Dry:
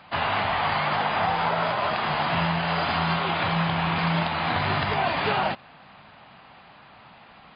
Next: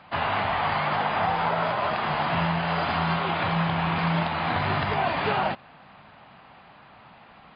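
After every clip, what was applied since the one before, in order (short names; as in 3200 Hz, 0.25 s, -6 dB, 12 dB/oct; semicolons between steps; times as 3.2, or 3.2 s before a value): high shelf 4100 Hz -9 dB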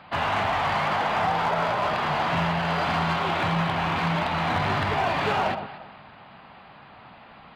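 echo with dull and thin repeats by turns 0.117 s, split 970 Hz, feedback 50%, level -9 dB; in parallel at -10 dB: wavefolder -27 dBFS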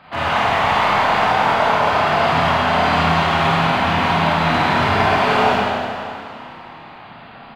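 on a send: frequency-shifting echo 0.205 s, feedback 62%, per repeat +31 Hz, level -13.5 dB; on the sum: Schroeder reverb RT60 1.8 s, combs from 25 ms, DRR -8 dB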